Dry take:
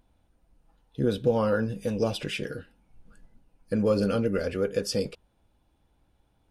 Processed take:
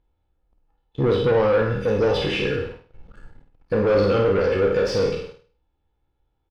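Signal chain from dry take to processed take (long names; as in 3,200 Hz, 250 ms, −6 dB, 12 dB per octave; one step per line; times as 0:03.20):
peak hold with a decay on every bin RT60 0.64 s
high-shelf EQ 6,200 Hz +9 dB
comb filter 2.3 ms, depth 50%
leveller curve on the samples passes 3
high-frequency loss of the air 250 metres
on a send: flutter between parallel walls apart 8.7 metres, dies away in 0.39 s
on the sum: level −3.5 dB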